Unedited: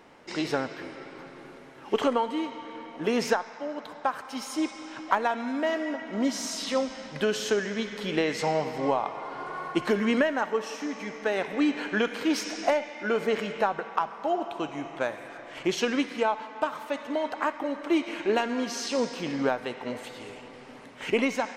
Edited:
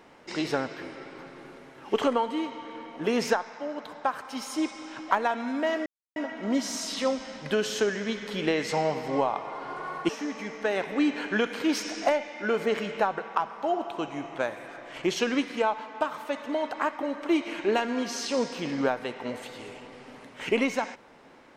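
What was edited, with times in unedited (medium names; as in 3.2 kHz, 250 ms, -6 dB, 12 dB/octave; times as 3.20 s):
5.86 s: insert silence 0.30 s
9.79–10.70 s: delete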